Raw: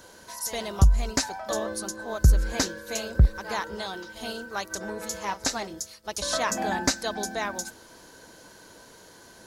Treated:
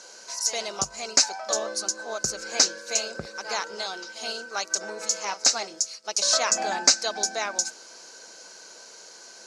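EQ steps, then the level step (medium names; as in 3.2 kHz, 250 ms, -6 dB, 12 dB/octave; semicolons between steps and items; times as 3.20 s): cabinet simulation 260–6400 Hz, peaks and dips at 290 Hz -6 dB, 1 kHz -6 dB, 1.8 kHz -9 dB, 3.1 kHz -3 dB; tilt EQ +3.5 dB/octave; peaking EQ 3.5 kHz -8.5 dB 0.42 oct; +4.0 dB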